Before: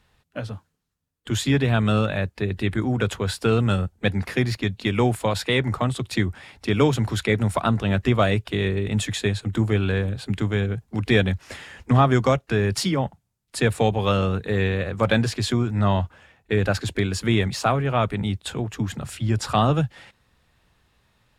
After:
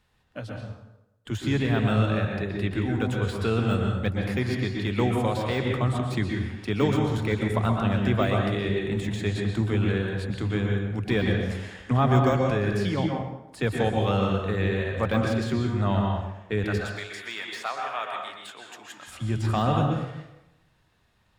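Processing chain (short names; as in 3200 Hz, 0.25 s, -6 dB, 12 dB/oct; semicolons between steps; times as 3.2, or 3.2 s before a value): de-esser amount 75%; 16.64–19.08 HPF 960 Hz 12 dB/oct; reverb RT60 0.90 s, pre-delay 0.112 s, DRR 0.5 dB; gain -5.5 dB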